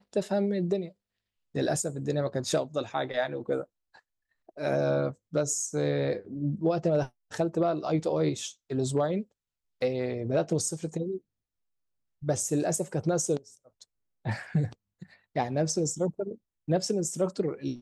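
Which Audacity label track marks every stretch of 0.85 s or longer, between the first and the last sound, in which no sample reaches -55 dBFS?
11.200000	12.220000	silence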